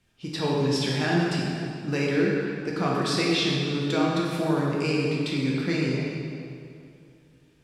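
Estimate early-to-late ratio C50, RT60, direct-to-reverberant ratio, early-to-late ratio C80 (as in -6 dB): -1.0 dB, 2.6 s, -4.5 dB, 0.5 dB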